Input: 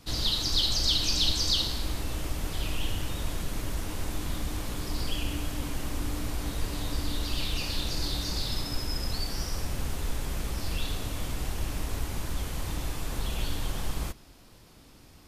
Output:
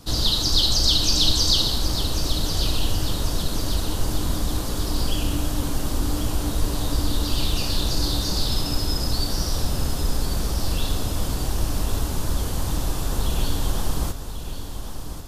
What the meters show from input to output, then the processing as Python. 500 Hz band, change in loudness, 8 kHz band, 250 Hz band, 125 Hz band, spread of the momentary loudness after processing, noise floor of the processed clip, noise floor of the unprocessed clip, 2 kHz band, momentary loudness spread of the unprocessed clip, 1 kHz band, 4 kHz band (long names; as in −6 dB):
+8.5 dB, +7.5 dB, +8.0 dB, +8.5 dB, +8.5 dB, 9 LU, −30 dBFS, −53 dBFS, +2.5 dB, 10 LU, +7.5 dB, +6.5 dB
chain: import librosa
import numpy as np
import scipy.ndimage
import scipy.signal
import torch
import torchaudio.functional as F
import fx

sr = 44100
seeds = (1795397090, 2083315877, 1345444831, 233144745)

p1 = fx.peak_eq(x, sr, hz=2200.0, db=-9.5, octaves=0.81)
p2 = p1 + fx.echo_feedback(p1, sr, ms=1092, feedback_pct=53, wet_db=-10.0, dry=0)
y = p2 * 10.0 ** (8.0 / 20.0)